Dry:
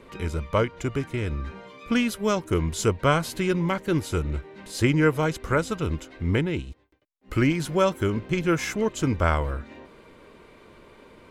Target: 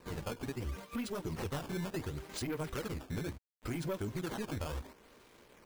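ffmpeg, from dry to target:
-af "acrusher=bits=7:mix=0:aa=0.000001,asoftclip=type=tanh:threshold=-20dB,agate=range=-9dB:threshold=-43dB:ratio=16:detection=peak,flanger=delay=16:depth=5.3:speed=0.82,atempo=2,alimiter=level_in=8dB:limit=-24dB:level=0:latency=1:release=256,volume=-8dB,acrusher=samples=13:mix=1:aa=0.000001:lfo=1:lforange=20.8:lforate=0.71,volume=1.5dB"

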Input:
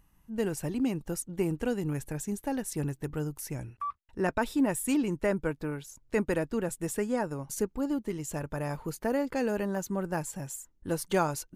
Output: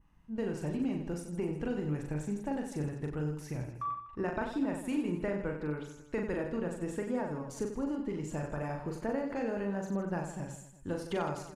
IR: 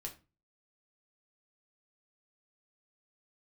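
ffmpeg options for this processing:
-filter_complex "[0:a]acompressor=threshold=-32dB:ratio=2.5,adynamicequalizer=threshold=0.00126:dfrequency=4600:dqfactor=1.2:tfrequency=4600:tqfactor=1.2:attack=5:release=100:ratio=0.375:range=1.5:mode=cutabove:tftype=bell,adynamicsmooth=sensitivity=2:basefreq=4.7k,asplit=2[a][b];[b]aecho=0:1:40|92|159.6|247.5|361.7:0.631|0.398|0.251|0.158|0.1[c];[a][c]amix=inputs=2:normalize=0,volume=-1.5dB"

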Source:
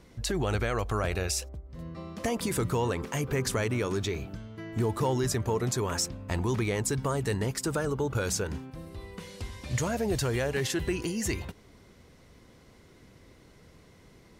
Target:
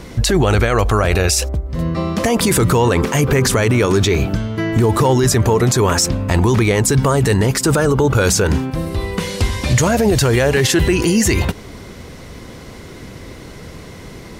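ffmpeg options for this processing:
-af "alimiter=level_in=26dB:limit=-1dB:release=50:level=0:latency=1,volume=-5dB"

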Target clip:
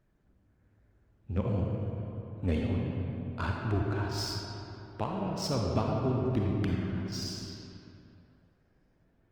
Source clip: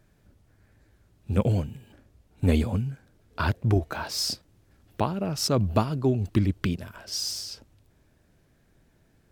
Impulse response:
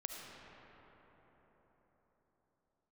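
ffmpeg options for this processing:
-filter_complex "[0:a]adynamicsmooth=sensitivity=4.5:basefreq=3.1k[a];[1:a]atrim=start_sample=2205,asetrate=70560,aresample=44100[b];[a][b]afir=irnorm=-1:irlink=0" -ar 48000 -c:a libopus -b:a 24k

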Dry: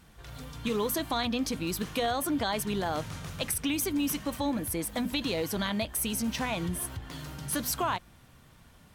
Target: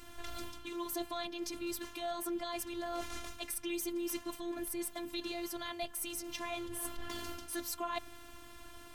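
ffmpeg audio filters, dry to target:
-af "areverse,acompressor=threshold=-42dB:ratio=12,areverse,afftfilt=real='hypot(re,im)*cos(PI*b)':imag='0':win_size=512:overlap=0.75,volume=9.5dB"

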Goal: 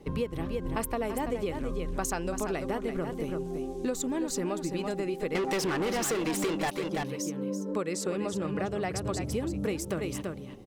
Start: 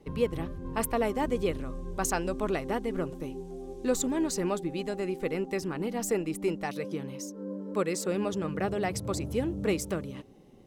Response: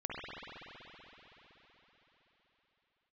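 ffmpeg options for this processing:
-filter_complex "[0:a]asettb=1/sr,asplit=3[a][b][c];[a]atrim=end=5.354[d];[b]atrim=start=5.35:end=6.7,asetpts=PTS-STARTPTS,afade=t=in:d=0.004:c=qsin,afade=t=out:st=1.346:d=0.004:c=qsin,asplit=2[e][f];[f]highpass=f=720:p=1,volume=29dB,asoftclip=type=tanh:threshold=-16dB[g];[e][g]amix=inputs=2:normalize=0,lowpass=f=6.7k:p=1,volume=-6dB[h];[c]atrim=start=6.696[i];[d][h]acrossfade=d=0.004:c1=hsin:c2=qsin[j];[j][i]acrossfade=d=0.004:c1=qsin:c2=hsin,aecho=1:1:334:0.376,acompressor=threshold=-33dB:ratio=6,asettb=1/sr,asplit=3[k][l][m];[k]atrim=end=7.694[n];[l]atrim=start=7.69:end=9.28,asetpts=PTS-STARTPTS,afade=t=in:d=0.004:c=qsin,afade=t=out:st=1.586:d=0.004:c=qsin,lowpass=11k[o];[m]atrim=start=9.276[p];[n][o]acrossfade=d=0.004:c1=hsin:c2=qsin[q];[q][p]acrossfade=d=0.004:c1=qsin:c2=hsin,volume=5dB"

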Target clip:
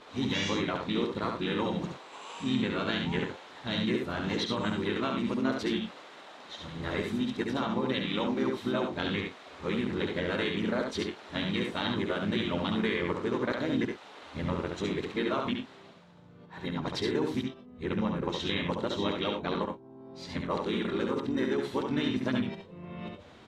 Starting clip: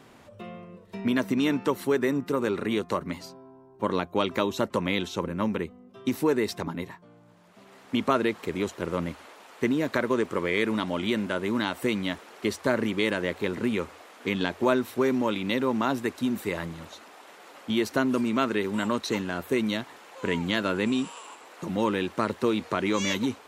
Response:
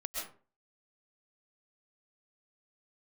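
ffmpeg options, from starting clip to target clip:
-filter_complex "[0:a]areverse,lowpass=6k,equalizer=f=3.8k:t=o:w=0.3:g=7.5,acompressor=threshold=-26dB:ratio=4,asplit=3[a][b][c];[b]asetrate=22050,aresample=44100,atempo=2,volume=-13dB[d];[c]asetrate=37084,aresample=44100,atempo=1.18921,volume=-5dB[e];[a][d][e]amix=inputs=3:normalize=0,aecho=1:1:69|92|114:0.596|0.251|0.141,volume=-3dB"

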